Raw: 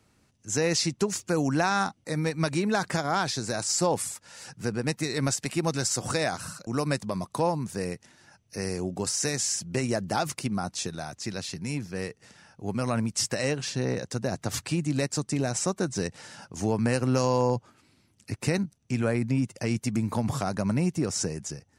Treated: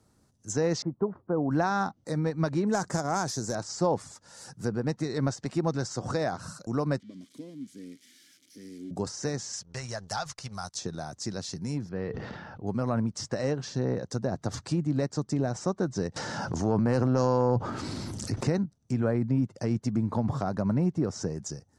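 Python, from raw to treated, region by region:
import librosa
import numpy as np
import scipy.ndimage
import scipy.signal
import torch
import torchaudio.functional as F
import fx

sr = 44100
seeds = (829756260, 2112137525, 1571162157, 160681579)

y = fx.chain(x, sr, fx.lowpass(hz=1200.0, slope=24),
    fx.low_shelf(hz=180.0, db=-6.0), at=(0.82, 1.51))
y = fx.chain(y, sr, fx.self_delay(depth_ms=0.081),
    fx.high_shelf_res(hz=5200.0, db=13.5, q=1.5), at=(2.67, 3.55))
y = fx.chain(y, sr, fx.crossing_spikes(level_db=-21.0),
    fx.vowel_filter(vowel='i'), at=(7.0, 8.91))
y = fx.chain(y, sr, fx.tone_stack(knobs='10-0-10'),
    fx.leveller(passes=2), at=(9.53, 10.75))
y = fx.chain(y, sr, fx.lowpass(hz=3400.0, slope=24),
    fx.sustainer(db_per_s=23.0), at=(11.89, 12.67))
y = fx.chain(y, sr, fx.transient(attack_db=-9, sustain_db=5),
    fx.env_flatten(amount_pct=70), at=(16.16, 18.48))
y = fx.dynamic_eq(y, sr, hz=6200.0, q=1.5, threshold_db=-42.0, ratio=4.0, max_db=6)
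y = fx.env_lowpass_down(y, sr, base_hz=2900.0, full_db=-24.5)
y = fx.peak_eq(y, sr, hz=2500.0, db=-13.5, octaves=0.96)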